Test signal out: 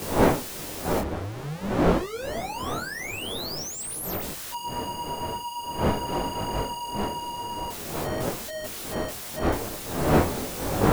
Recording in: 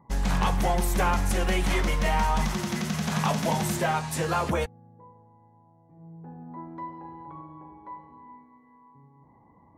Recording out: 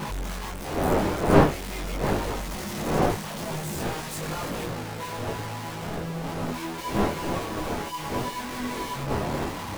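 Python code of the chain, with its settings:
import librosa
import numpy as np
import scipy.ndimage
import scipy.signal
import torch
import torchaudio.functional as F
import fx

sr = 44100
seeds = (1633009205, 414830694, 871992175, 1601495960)

y = np.sign(x) * np.sqrt(np.mean(np.square(x)))
y = fx.dmg_wind(y, sr, seeds[0], corner_hz=590.0, level_db=-23.0)
y = fx.detune_double(y, sr, cents=16)
y = F.gain(torch.from_numpy(y), -2.0).numpy()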